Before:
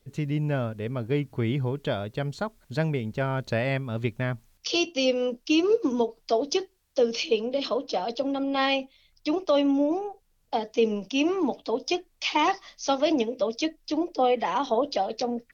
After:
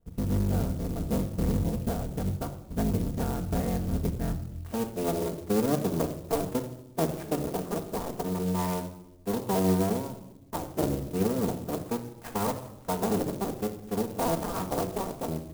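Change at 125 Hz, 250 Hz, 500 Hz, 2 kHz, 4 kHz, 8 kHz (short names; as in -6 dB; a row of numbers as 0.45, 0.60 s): +1.0 dB, -2.0 dB, -5.5 dB, -11.5 dB, -13.0 dB, n/a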